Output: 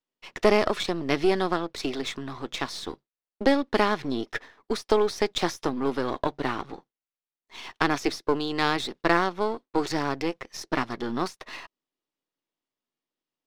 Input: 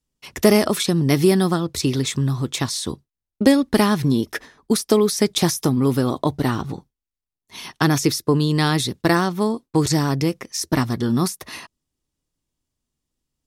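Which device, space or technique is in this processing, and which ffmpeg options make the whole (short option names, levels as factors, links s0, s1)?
crystal radio: -af "highpass=380,lowpass=3500,aeval=exprs='if(lt(val(0),0),0.447*val(0),val(0))':c=same"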